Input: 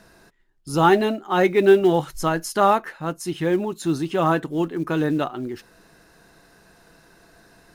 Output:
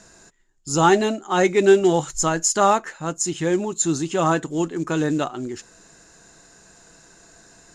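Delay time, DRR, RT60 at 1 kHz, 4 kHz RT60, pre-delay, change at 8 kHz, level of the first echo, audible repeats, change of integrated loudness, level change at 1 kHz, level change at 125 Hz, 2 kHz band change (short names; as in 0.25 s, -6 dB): none, none, none, none, none, +14.0 dB, none, none, +0.5 dB, 0.0 dB, 0.0 dB, +0.5 dB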